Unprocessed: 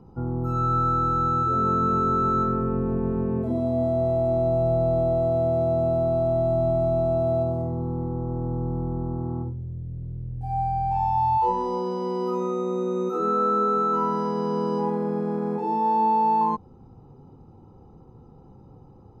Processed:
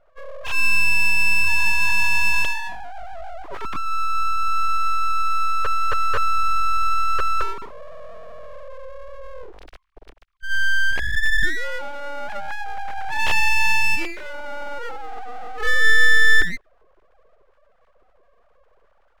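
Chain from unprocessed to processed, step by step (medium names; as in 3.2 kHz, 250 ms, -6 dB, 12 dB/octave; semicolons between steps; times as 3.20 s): formants replaced by sine waves; full-wave rectifier; trim +7 dB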